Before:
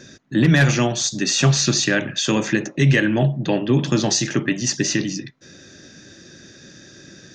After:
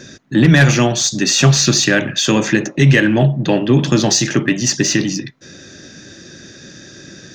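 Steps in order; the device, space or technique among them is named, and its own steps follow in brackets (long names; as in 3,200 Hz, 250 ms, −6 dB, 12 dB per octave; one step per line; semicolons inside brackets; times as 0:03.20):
parallel distortion (in parallel at −13 dB: hard clipping −23.5 dBFS, distortion −4 dB)
on the sum: level +4.5 dB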